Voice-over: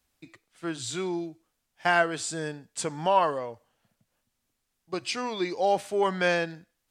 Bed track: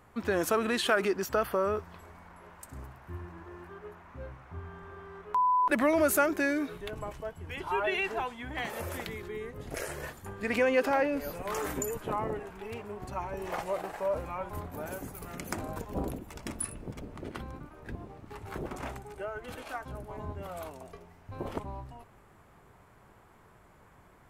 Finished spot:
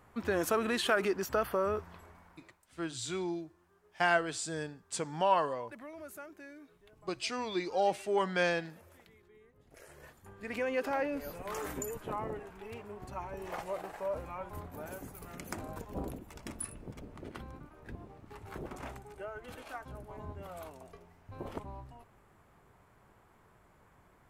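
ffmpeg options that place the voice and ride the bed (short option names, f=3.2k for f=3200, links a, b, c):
-filter_complex "[0:a]adelay=2150,volume=-5dB[a];[1:a]volume=14.5dB,afade=t=out:st=1.91:d=0.69:silence=0.105925,afade=t=in:st=9.7:d=1.42:silence=0.141254[b];[a][b]amix=inputs=2:normalize=0"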